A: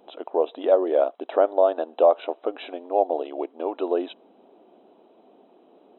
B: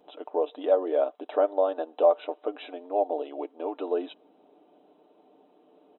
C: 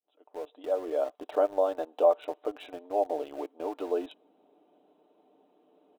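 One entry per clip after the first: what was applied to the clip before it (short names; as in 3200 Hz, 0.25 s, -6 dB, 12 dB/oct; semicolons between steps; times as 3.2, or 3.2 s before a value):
comb 6.7 ms, depth 56%; gain -5.5 dB
opening faded in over 1.31 s; in parallel at -7 dB: sample gate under -36 dBFS; on the sum: gain -5 dB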